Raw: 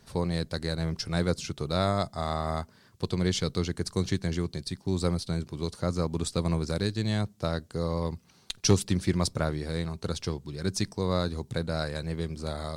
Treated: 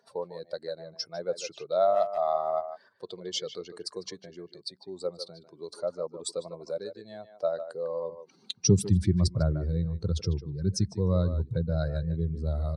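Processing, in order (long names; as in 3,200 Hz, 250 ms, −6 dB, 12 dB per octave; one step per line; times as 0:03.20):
expanding power law on the bin magnitudes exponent 1.9
high-pass filter sweep 630 Hz → 71 Hz, 0:08.04–0:09.03
far-end echo of a speakerphone 150 ms, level −10 dB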